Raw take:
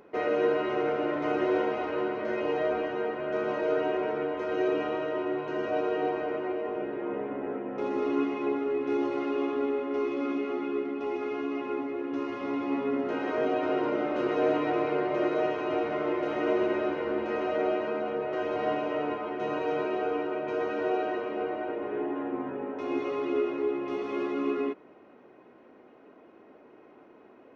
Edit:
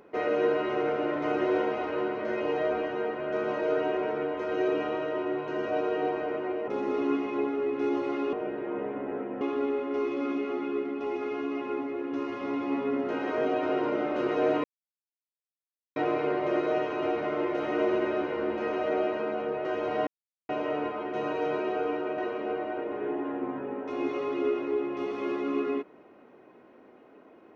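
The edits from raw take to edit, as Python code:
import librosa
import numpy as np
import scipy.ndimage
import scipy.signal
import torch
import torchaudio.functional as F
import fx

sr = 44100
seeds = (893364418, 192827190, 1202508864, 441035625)

y = fx.edit(x, sr, fx.move(start_s=6.68, length_s=1.08, to_s=9.41),
    fx.insert_silence(at_s=14.64, length_s=1.32),
    fx.insert_silence(at_s=18.75, length_s=0.42),
    fx.cut(start_s=20.44, length_s=0.65), tone=tone)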